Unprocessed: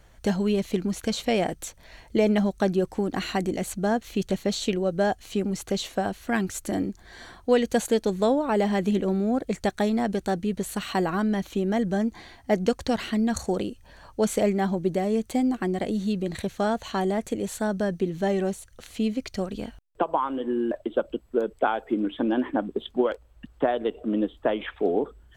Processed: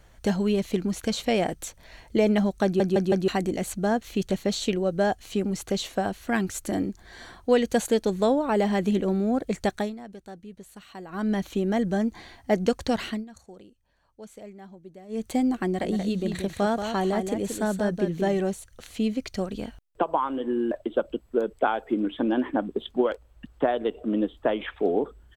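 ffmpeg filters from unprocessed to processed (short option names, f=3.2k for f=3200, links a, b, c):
-filter_complex "[0:a]asplit=3[a][b][c];[a]afade=t=out:st=15.8:d=0.02[d];[b]aecho=1:1:180:0.447,afade=t=in:st=15.8:d=0.02,afade=t=out:st=18.39:d=0.02[e];[c]afade=t=in:st=18.39:d=0.02[f];[d][e][f]amix=inputs=3:normalize=0,asplit=9[g][h][i][j][k][l][m][n][o];[g]atrim=end=2.802[p];[h]atrim=start=2.638:end=2.802[q];[i]atrim=start=2.638:end=2.802[r];[j]atrim=start=2.638:end=2.802[s];[k]atrim=start=3.278:end=9.95,asetpts=PTS-STARTPTS,afade=t=out:st=6.462:d=0.21:silence=0.158489[t];[l]atrim=start=9.95:end=11.09,asetpts=PTS-STARTPTS,volume=-16dB[u];[m]atrim=start=11.09:end=13.25,asetpts=PTS-STARTPTS,afade=t=in:d=0.21:silence=0.158489,afade=t=out:st=1.98:d=0.18:silence=0.0944061[v];[n]atrim=start=13.25:end=15.08,asetpts=PTS-STARTPTS,volume=-20.5dB[w];[o]atrim=start=15.08,asetpts=PTS-STARTPTS,afade=t=in:d=0.18:silence=0.0944061[x];[p][q]acrossfade=d=0.004:c1=hsin:c2=hsin[y];[y][r]acrossfade=d=0.004:c1=hsin:c2=hsin[z];[z][s]acrossfade=d=0.004:c1=hsin:c2=hsin[aa];[t][u][v][w][x]concat=n=5:v=0:a=1[ab];[aa][ab]acrossfade=d=0.004:c1=hsin:c2=hsin"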